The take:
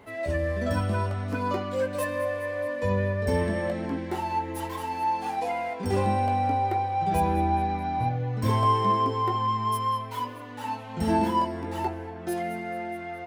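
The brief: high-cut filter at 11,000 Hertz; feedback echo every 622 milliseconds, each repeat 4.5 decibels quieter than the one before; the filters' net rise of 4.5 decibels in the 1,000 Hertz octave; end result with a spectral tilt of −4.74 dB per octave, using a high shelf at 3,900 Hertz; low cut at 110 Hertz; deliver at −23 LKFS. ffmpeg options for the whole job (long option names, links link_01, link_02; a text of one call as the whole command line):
ffmpeg -i in.wav -af "highpass=110,lowpass=11000,equalizer=frequency=1000:width_type=o:gain=5,highshelf=frequency=3900:gain=5,aecho=1:1:622|1244|1866|2488|3110|3732|4354|4976|5598:0.596|0.357|0.214|0.129|0.0772|0.0463|0.0278|0.0167|0.01" out.wav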